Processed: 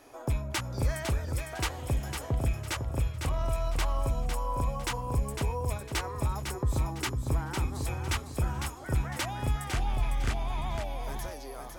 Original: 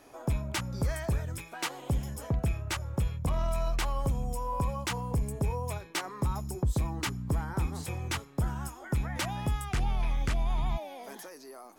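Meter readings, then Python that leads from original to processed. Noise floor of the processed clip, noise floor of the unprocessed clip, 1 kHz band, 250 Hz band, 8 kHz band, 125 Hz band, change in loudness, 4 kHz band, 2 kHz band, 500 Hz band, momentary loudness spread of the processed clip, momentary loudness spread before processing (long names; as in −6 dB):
−42 dBFS, −50 dBFS, +1.0 dB, −1.5 dB, +1.5 dB, +0.5 dB, +0.5 dB, +1.5 dB, +1.5 dB, +1.5 dB, 3 LU, 5 LU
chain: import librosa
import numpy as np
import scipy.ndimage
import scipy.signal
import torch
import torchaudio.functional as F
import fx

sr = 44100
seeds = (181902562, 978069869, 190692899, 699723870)

y = fx.peak_eq(x, sr, hz=180.0, db=-12.5, octaves=0.3)
y = fx.rider(y, sr, range_db=4, speed_s=2.0)
y = fx.echo_feedback(y, sr, ms=504, feedback_pct=29, wet_db=-6)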